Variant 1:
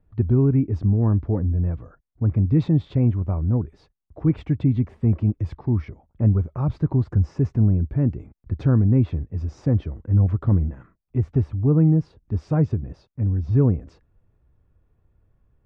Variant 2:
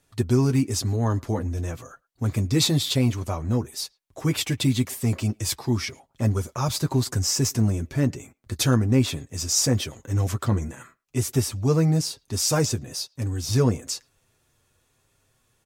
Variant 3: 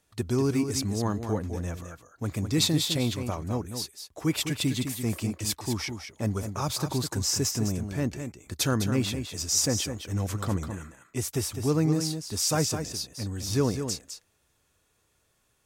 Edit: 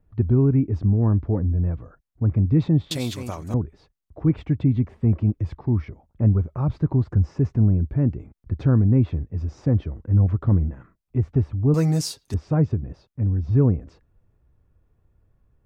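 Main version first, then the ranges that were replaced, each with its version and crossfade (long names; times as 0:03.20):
1
0:02.91–0:03.54: punch in from 3
0:11.74–0:12.34: punch in from 2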